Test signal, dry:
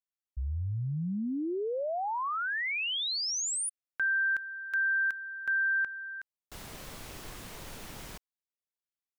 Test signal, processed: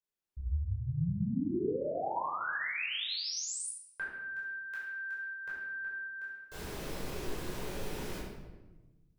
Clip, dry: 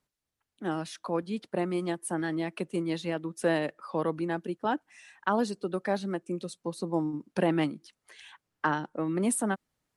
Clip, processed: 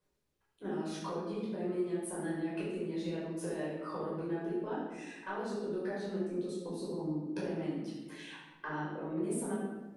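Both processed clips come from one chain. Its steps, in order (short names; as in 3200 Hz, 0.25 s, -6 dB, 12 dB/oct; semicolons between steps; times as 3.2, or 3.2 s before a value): bell 400 Hz +8.5 dB 0.85 oct; limiter -20.5 dBFS; compressor 6:1, threshold -37 dBFS; shoebox room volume 710 m³, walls mixed, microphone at 5.1 m; gain -8.5 dB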